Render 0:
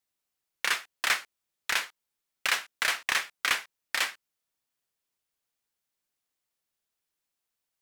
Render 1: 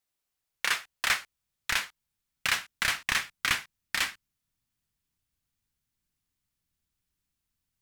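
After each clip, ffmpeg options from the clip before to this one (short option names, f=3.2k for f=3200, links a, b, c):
-af "asubboost=boost=11:cutoff=160"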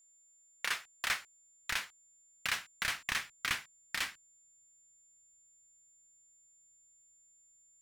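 -af "aeval=exprs='val(0)+0.00158*sin(2*PI*7200*n/s)':c=same,volume=-7dB"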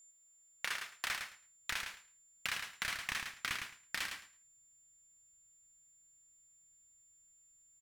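-af "acompressor=threshold=-42dB:ratio=2.5,aecho=1:1:108|216|324:0.501|0.0802|0.0128,volume=3.5dB"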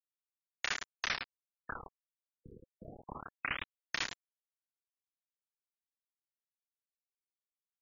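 -af "acrusher=bits=5:mix=0:aa=0.000001,afftfilt=real='re*lt(b*sr/1024,510*pow(7200/510,0.5+0.5*sin(2*PI*0.3*pts/sr)))':imag='im*lt(b*sr/1024,510*pow(7200/510,0.5+0.5*sin(2*PI*0.3*pts/sr)))':win_size=1024:overlap=0.75,volume=3dB"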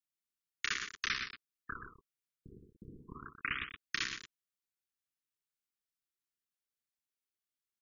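-filter_complex "[0:a]asuperstop=centerf=690:order=8:qfactor=0.99,asplit=2[a][b];[b]aecho=0:1:123:0.398[c];[a][c]amix=inputs=2:normalize=0"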